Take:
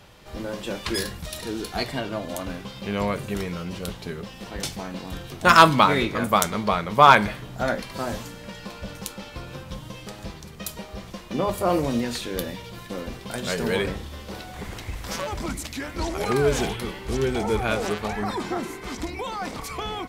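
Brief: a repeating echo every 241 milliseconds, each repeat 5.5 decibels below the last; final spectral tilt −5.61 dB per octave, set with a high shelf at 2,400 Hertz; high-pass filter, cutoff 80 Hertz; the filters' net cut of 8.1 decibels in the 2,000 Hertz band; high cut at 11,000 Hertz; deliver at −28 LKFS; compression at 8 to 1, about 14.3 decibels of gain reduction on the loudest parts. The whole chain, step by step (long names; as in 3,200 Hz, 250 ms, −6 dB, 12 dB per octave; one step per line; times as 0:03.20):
high-pass filter 80 Hz
low-pass filter 11,000 Hz
parametric band 2,000 Hz −8.5 dB
high-shelf EQ 2,400 Hz −7.5 dB
downward compressor 8 to 1, threshold −25 dBFS
repeating echo 241 ms, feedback 53%, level −5.5 dB
level +4 dB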